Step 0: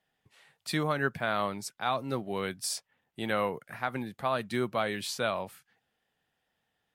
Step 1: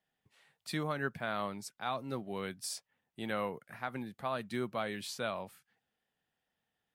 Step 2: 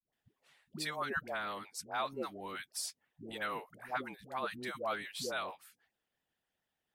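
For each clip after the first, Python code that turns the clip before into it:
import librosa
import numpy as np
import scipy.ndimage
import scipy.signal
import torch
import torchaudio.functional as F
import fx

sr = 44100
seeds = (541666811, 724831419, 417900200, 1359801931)

y1 = fx.peak_eq(x, sr, hz=210.0, db=2.5, octaves=0.77)
y1 = y1 * 10.0 ** (-6.5 / 20.0)
y2 = fx.dispersion(y1, sr, late='highs', ms=128.0, hz=500.0)
y2 = fx.hpss(y2, sr, part='harmonic', gain_db=-15)
y2 = y2 * 10.0 ** (3.0 / 20.0)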